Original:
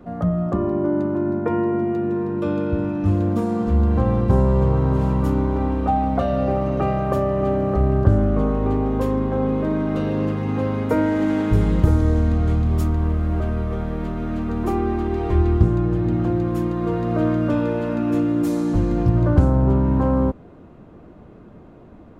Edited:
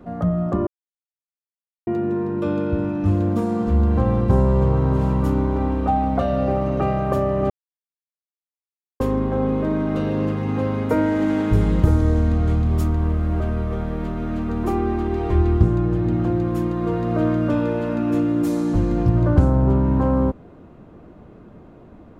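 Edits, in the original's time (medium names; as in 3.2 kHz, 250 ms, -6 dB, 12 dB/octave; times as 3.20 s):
0.67–1.87 s: mute
7.50–9.00 s: mute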